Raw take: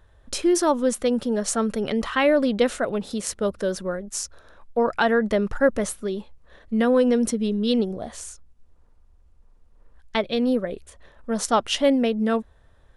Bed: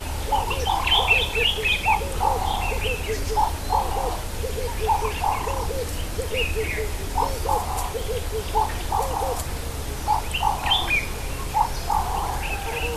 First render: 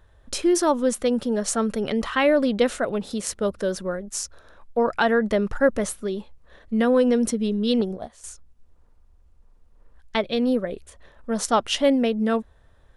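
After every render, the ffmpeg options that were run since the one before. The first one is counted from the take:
-filter_complex "[0:a]asettb=1/sr,asplit=3[a][b][c];[a]atrim=end=7.814[d];[b]atrim=start=7.81:end=8.24,asetpts=PTS-STARTPTS,afade=t=in:d=0.004:c=qsin,afade=t=out:st=0.426:d=0.004:c=qsin,agate=range=-13dB:threshold=-33dB:ratio=16:release=100:detection=peak[e];[c]atrim=start=8.236[f];[d][e]acrossfade=d=0.004:c1=hsin:c2=qsin[g];[g][f]acrossfade=d=0.004:c1=qsin:c2=hsin"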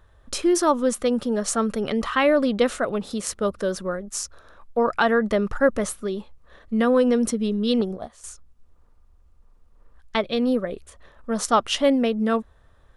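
-af "equalizer=f=1.2k:w=5.2:g=6"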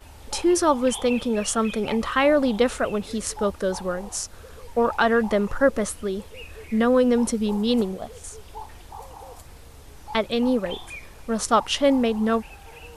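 -filter_complex "[1:a]volume=-16.5dB[a];[0:a][a]amix=inputs=2:normalize=0"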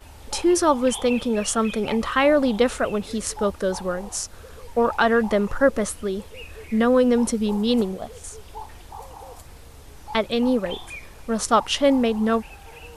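-af "volume=1dB"

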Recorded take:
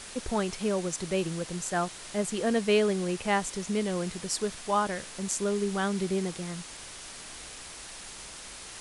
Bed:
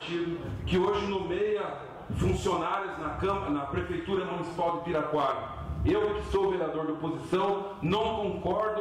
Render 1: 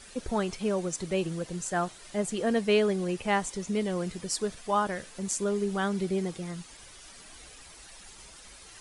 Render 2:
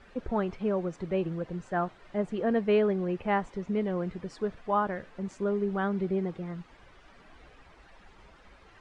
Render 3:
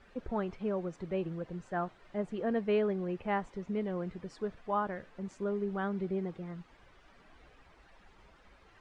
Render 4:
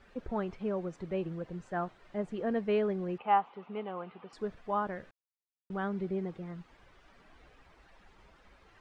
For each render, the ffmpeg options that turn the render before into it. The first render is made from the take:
-af "afftdn=nr=10:nf=-44"
-af "lowpass=1.8k"
-af "volume=-5dB"
-filter_complex "[0:a]asettb=1/sr,asplit=3[a][b][c];[a]atrim=end=3.184[d];[b]atrim=start=3.18:end=4.33,asetpts=PTS-STARTPTS,afade=t=in:d=0.004:c=qsin,afade=t=out:st=1.146:d=0.004:c=qsin,highpass=310,equalizer=f=330:t=q:w=4:g=-7,equalizer=f=570:t=q:w=4:g=-4,equalizer=f=810:t=q:w=4:g=10,equalizer=f=1.2k:t=q:w=4:g=8,equalizer=f=1.8k:t=q:w=4:g=-6,equalizer=f=2.8k:t=q:w=4:g=6,lowpass=f=3.5k:w=0.5412,lowpass=f=3.5k:w=1.3066[e];[c]atrim=start=4.326[f];[d][e]acrossfade=d=0.004:c1=hsin:c2=qsin[g];[g][f]acrossfade=d=0.004:c1=qsin:c2=hsin,asplit=3[h][i][j];[h]atrim=end=5.11,asetpts=PTS-STARTPTS,afade=t=out:st=5.106:d=0.004:c=hsin[k];[i]atrim=start=5.11:end=5.7,asetpts=PTS-STARTPTS,volume=0[l];[j]atrim=start=5.7,asetpts=PTS-STARTPTS,afade=t=in:d=0.004:c=hsin[m];[k][l][m]concat=n=3:v=0:a=1"

